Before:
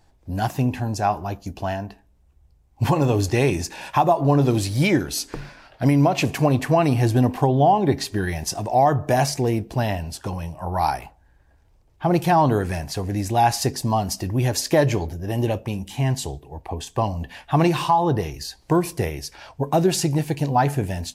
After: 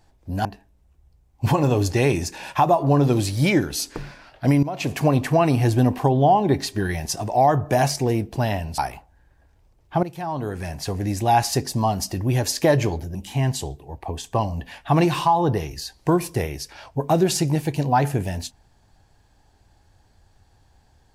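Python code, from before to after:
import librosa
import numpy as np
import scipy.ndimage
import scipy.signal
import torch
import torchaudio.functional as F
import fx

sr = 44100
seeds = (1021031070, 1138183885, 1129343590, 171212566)

y = fx.edit(x, sr, fx.cut(start_s=0.45, length_s=1.38),
    fx.fade_in_from(start_s=6.01, length_s=0.39, floor_db=-16.5),
    fx.cut(start_s=10.16, length_s=0.71),
    fx.fade_in_from(start_s=12.12, length_s=0.83, curve='qua', floor_db=-14.5),
    fx.cut(start_s=15.24, length_s=0.54), tone=tone)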